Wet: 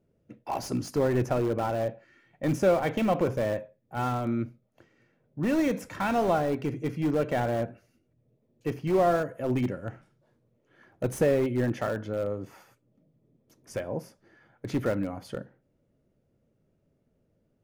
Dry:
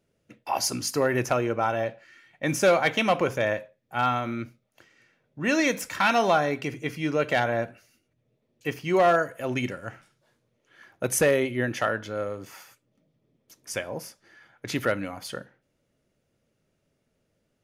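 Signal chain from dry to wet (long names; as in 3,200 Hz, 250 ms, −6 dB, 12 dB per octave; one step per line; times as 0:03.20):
in parallel at −6 dB: wrap-around overflow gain 22 dB
on the sum: tilt shelving filter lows +8.5 dB, about 1,100 Hz
level −7.5 dB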